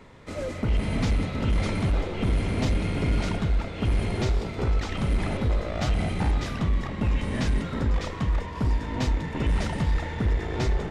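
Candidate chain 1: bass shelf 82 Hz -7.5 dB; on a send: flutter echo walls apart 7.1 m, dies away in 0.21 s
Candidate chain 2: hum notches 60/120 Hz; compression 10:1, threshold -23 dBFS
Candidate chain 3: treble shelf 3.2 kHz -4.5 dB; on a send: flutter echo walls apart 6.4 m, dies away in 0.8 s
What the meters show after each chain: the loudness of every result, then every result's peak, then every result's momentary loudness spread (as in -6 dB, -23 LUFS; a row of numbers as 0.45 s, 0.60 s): -29.5 LUFS, -30.0 LUFS, -23.0 LUFS; -16.0 dBFS, -17.5 dBFS, -8.5 dBFS; 3 LU, 2 LU, 2 LU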